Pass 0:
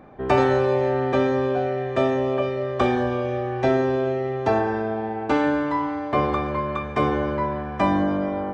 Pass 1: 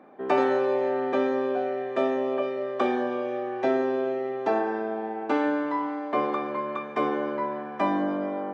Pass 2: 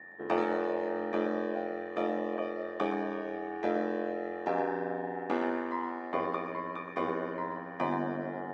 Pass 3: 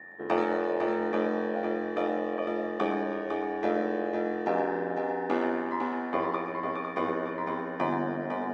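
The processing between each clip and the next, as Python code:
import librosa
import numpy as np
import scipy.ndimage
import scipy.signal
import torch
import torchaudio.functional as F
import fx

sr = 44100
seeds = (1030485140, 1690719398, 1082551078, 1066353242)

y1 = scipy.signal.sosfilt(scipy.signal.butter(4, 220.0, 'highpass', fs=sr, output='sos'), x)
y1 = fx.high_shelf(y1, sr, hz=4700.0, db=-8.5)
y1 = y1 * 10.0 ** (-3.5 / 20.0)
y2 = y1 + 10.0 ** (-40.0 / 20.0) * np.sin(2.0 * np.pi * 1800.0 * np.arange(len(y1)) / sr)
y2 = y2 + 10.0 ** (-9.5 / 20.0) * np.pad(y2, (int(118 * sr / 1000.0), 0))[:len(y2)]
y2 = y2 * np.sin(2.0 * np.pi * 44.0 * np.arange(len(y2)) / sr)
y2 = y2 * 10.0 ** (-4.0 / 20.0)
y3 = y2 + 10.0 ** (-6.0 / 20.0) * np.pad(y2, (int(504 * sr / 1000.0), 0))[:len(y2)]
y3 = y3 * 10.0 ** (2.5 / 20.0)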